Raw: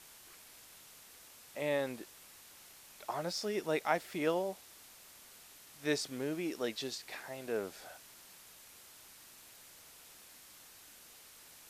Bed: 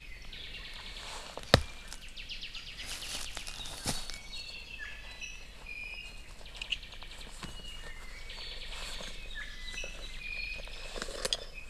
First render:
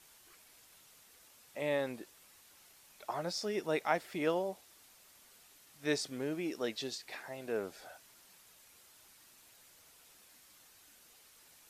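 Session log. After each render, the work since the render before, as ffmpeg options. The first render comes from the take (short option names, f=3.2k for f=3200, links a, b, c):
-af "afftdn=nr=6:nf=-57"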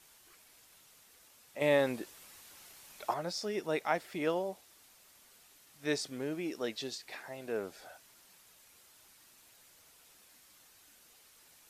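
-filter_complex "[0:a]asettb=1/sr,asplit=3[a][b][c];[a]atrim=end=1.614[d];[b]atrim=start=1.61:end=3.14,asetpts=PTS-STARTPTS,afade=t=in:d=0.004:c=qsin,afade=t=out:st=1.526:d=0.004:c=qsin,acontrast=57[e];[c]atrim=start=3.136[f];[d][e]acrossfade=d=0.004:c1=hsin:c2=qsin[g];[g][f]acrossfade=d=0.004:c1=qsin:c2=hsin"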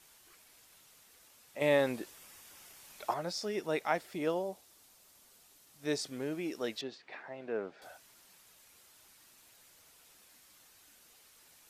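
-filter_complex "[0:a]asettb=1/sr,asplit=3[a][b][c];[a]atrim=end=2.154[d];[b]atrim=start=2.15:end=2.8,asetpts=PTS-STARTPTS,afade=t=in:d=0.004:c=qsin,afade=t=out:st=0.646:d=0.004:c=qsin,bandreject=f=4.1k:w=9.9[e];[c]atrim=start=2.796[f];[d][e]acrossfade=d=0.004:c1=hsin:c2=qsin[g];[g][f]acrossfade=d=0.004:c1=qsin:c2=hsin,asettb=1/sr,asplit=3[h][i][j];[h]atrim=end=4.014[k];[i]atrim=start=4.01:end=5.99,asetpts=PTS-STARTPTS,afade=t=in:d=0.004:c=qsin,afade=t=out:st=1.976:d=0.004:c=qsin,equalizer=f=2k:t=o:w=1.6:g=-4.5[l];[j]atrim=start=5.986[m];[k][l]acrossfade=d=0.004:c1=hsin:c2=qsin[n];[n][m]acrossfade=d=0.004:c1=qsin:c2=hsin,asettb=1/sr,asplit=3[o][p][q];[o]atrim=end=6.814[r];[p]atrim=start=6.81:end=7.82,asetpts=PTS-STARTPTS,afade=t=in:d=0.004:c=qsin,afade=t=out:st=1.006:d=0.004:c=qsin,highpass=140,lowpass=2.5k[s];[q]atrim=start=7.816[t];[r][s]acrossfade=d=0.004:c1=hsin:c2=qsin[u];[u][t]acrossfade=d=0.004:c1=qsin:c2=hsin"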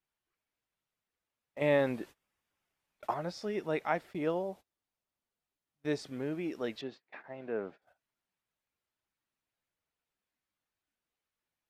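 -af "bass=f=250:g=4,treble=f=4k:g=-12,agate=range=-25dB:threshold=-48dB:ratio=16:detection=peak"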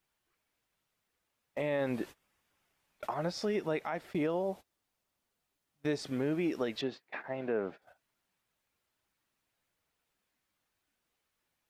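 -filter_complex "[0:a]asplit=2[a][b];[b]acompressor=threshold=-39dB:ratio=6,volume=3dB[c];[a][c]amix=inputs=2:normalize=0,alimiter=limit=-23.5dB:level=0:latency=1:release=129"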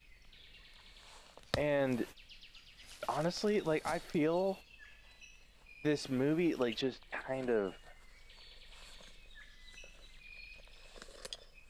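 -filter_complex "[1:a]volume=-13.5dB[a];[0:a][a]amix=inputs=2:normalize=0"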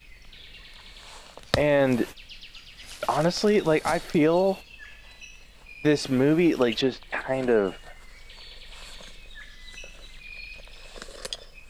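-af "volume=11.5dB"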